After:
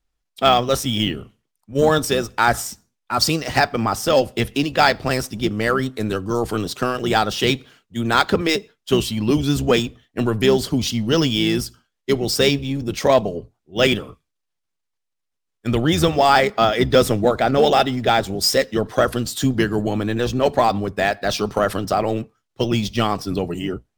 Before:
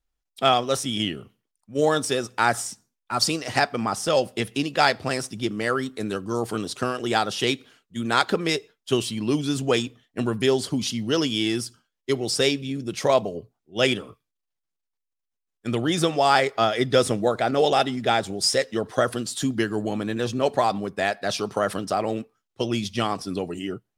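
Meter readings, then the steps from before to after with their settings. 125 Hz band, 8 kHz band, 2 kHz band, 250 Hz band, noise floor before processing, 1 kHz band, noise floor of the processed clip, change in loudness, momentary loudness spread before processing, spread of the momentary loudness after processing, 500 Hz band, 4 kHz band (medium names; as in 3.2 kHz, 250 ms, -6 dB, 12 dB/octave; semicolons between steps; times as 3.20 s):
+7.5 dB, +2.5 dB, +4.0 dB, +5.0 dB, -83 dBFS, +4.5 dB, -78 dBFS, +4.5 dB, 9 LU, 9 LU, +4.5 dB, +4.0 dB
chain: octave divider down 1 oct, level -5 dB; in parallel at -5 dB: overload inside the chain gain 14 dB; on the sum: decimation joined by straight lines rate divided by 2×; trim +1 dB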